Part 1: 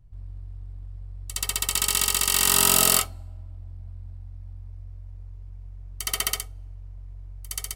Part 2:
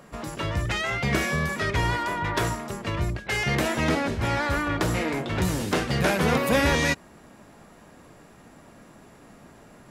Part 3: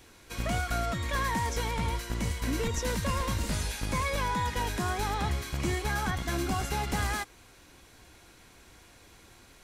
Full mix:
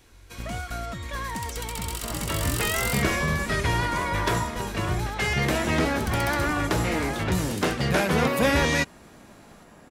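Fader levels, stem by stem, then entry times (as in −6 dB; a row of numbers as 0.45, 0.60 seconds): −13.0, 0.0, −2.5 decibels; 0.00, 1.90, 0.00 seconds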